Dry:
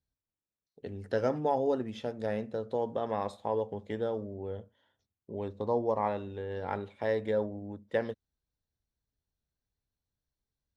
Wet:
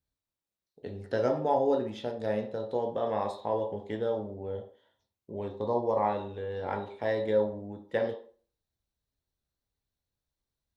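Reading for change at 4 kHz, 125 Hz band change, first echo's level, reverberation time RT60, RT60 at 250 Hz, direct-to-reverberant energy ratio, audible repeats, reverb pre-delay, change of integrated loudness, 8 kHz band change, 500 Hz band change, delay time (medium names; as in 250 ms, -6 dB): +2.5 dB, +0.5 dB, no echo, 0.45 s, 0.45 s, 4.5 dB, no echo, 13 ms, +2.0 dB, no reading, +2.5 dB, no echo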